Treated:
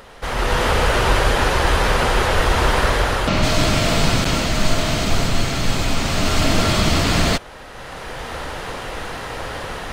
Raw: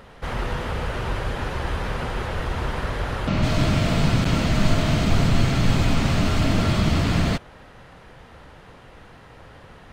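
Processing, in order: low shelf 73 Hz +11 dB; AGC gain up to 14 dB; tone controls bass -11 dB, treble +6 dB; gain +4.5 dB

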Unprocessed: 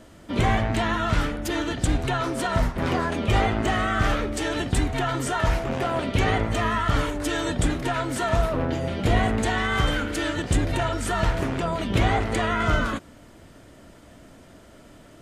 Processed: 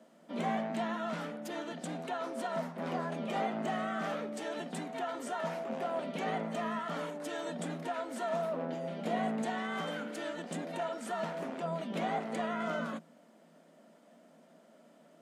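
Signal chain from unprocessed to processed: rippled Chebyshev high-pass 160 Hz, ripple 9 dB; gain -6.5 dB

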